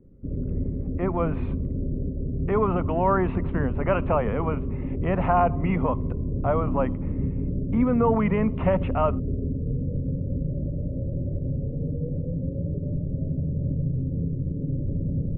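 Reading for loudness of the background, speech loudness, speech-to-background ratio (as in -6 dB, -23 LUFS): -29.0 LUFS, -26.0 LUFS, 3.0 dB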